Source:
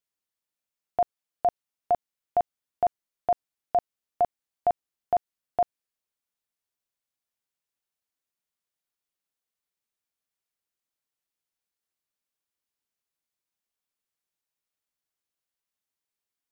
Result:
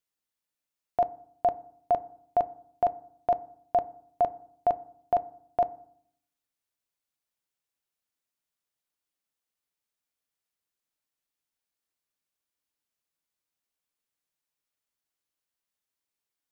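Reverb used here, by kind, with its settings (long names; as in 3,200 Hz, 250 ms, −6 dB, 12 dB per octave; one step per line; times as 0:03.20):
feedback delay network reverb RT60 0.63 s, low-frequency decay 1.4×, high-frequency decay 0.35×, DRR 15 dB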